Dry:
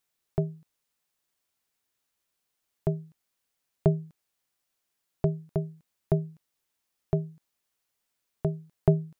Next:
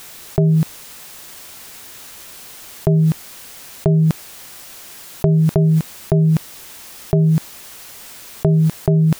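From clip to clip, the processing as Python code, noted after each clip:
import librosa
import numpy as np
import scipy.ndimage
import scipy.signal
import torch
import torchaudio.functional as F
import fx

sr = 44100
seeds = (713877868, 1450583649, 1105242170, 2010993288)

y = fx.env_flatten(x, sr, amount_pct=100)
y = F.gain(torch.from_numpy(y), 3.0).numpy()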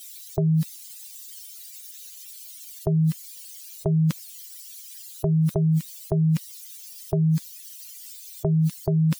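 y = fx.bin_expand(x, sr, power=3.0)
y = fx.high_shelf(y, sr, hz=2100.0, db=12.0)
y = F.gain(torch.from_numpy(y), -5.5).numpy()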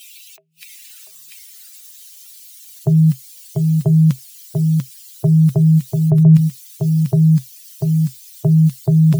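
y = fx.filter_sweep_highpass(x, sr, from_hz=2600.0, to_hz=130.0, start_s=0.57, end_s=2.66, q=7.7)
y = y + 10.0 ** (-4.0 / 20.0) * np.pad(y, (int(692 * sr / 1000.0), 0))[:len(y)]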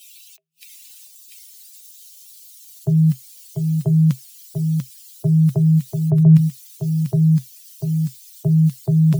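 y = fx.band_widen(x, sr, depth_pct=40)
y = F.gain(torch.from_numpy(y), -3.0).numpy()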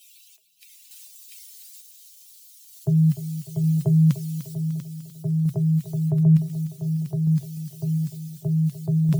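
y = fx.tremolo_random(x, sr, seeds[0], hz=1.1, depth_pct=55)
y = fx.echo_feedback(y, sr, ms=299, feedback_pct=53, wet_db=-13.0)
y = F.gain(torch.from_numpy(y), -1.5).numpy()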